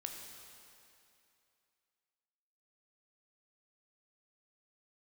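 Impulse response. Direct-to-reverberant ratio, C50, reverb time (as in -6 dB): 2.0 dB, 3.5 dB, 2.7 s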